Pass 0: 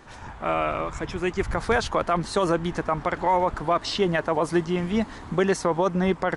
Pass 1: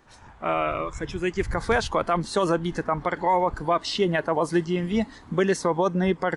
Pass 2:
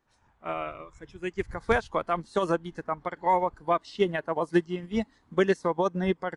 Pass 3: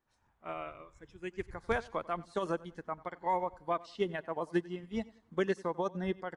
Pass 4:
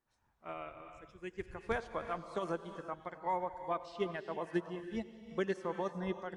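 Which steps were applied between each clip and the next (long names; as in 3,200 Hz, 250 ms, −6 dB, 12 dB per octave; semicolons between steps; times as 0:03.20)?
noise reduction from a noise print of the clip's start 9 dB
expander for the loud parts 2.5 to 1, over −30 dBFS; level +1 dB
repeating echo 93 ms, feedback 34%, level −21 dB; level −8 dB
convolution reverb, pre-delay 3 ms, DRR 9 dB; level −3.5 dB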